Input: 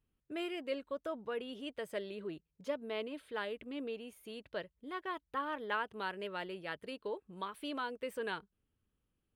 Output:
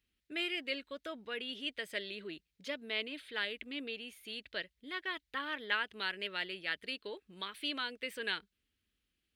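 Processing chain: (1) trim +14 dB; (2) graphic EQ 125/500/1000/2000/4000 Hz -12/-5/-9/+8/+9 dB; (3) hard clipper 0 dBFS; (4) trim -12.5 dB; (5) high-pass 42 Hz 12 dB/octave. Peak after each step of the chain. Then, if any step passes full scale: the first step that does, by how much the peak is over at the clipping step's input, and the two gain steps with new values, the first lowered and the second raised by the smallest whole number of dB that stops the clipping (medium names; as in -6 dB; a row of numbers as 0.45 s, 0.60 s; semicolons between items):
-8.0 dBFS, -5.0 dBFS, -5.0 dBFS, -17.5 dBFS, -17.5 dBFS; nothing clips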